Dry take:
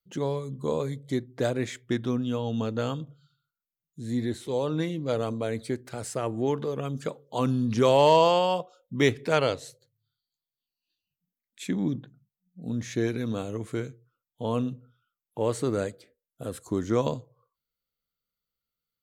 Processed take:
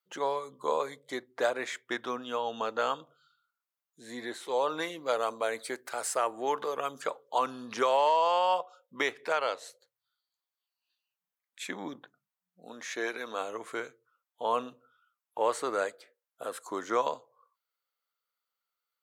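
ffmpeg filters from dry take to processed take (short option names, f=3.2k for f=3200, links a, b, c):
-filter_complex "[0:a]asettb=1/sr,asplit=3[a][b][c];[a]atrim=end=4.694[d];[b]atrim=start=4.69:end=7.02,asetpts=PTS-STARTPTS,afade=t=in:d=0.004:c=qsin,afade=t=out:st=2.326:d=0.004:c=qsin,highshelf=f=6.7k:g=9[e];[c]atrim=start=7.016[f];[d][e]acrossfade=d=0.004:c1=hsin:c2=qsin[g];[g][f]acrossfade=d=0.004:c1=qsin:c2=hsin,asettb=1/sr,asplit=3[h][i][j];[h]atrim=end=12.664[k];[i]atrim=start=12.66:end=13.41,asetpts=PTS-STARTPTS,afade=t=in:d=0.004:c=qsin,afade=t=out:st=0.746:d=0.004:c=qsin,equalizer=f=63:w=0.52:g=-15[l];[j]atrim=start=13.406[m];[k][l]acrossfade=d=0.004:c1=hsin:c2=qsin[n];[n][m]acrossfade=d=0.004:c1=qsin:c2=hsin,highpass=560,equalizer=f=1.1k:w=0.7:g=9.5,alimiter=limit=-14.5dB:level=0:latency=1:release=449,volume=-1.5dB"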